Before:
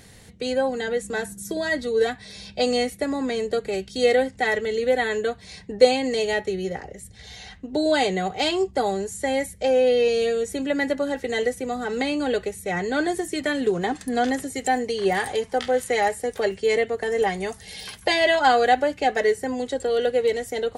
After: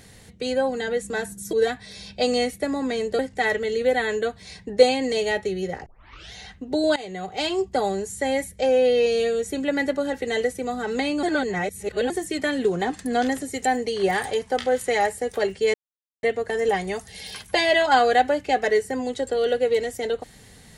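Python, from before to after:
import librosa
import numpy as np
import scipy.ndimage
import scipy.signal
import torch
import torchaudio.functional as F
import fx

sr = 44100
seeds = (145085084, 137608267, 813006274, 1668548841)

y = fx.edit(x, sr, fx.cut(start_s=1.53, length_s=0.39),
    fx.cut(start_s=3.58, length_s=0.63),
    fx.tape_start(start_s=6.88, length_s=0.47),
    fx.fade_in_from(start_s=7.98, length_s=0.96, curve='qsin', floor_db=-19.0),
    fx.reverse_span(start_s=12.25, length_s=0.87),
    fx.insert_silence(at_s=16.76, length_s=0.49), tone=tone)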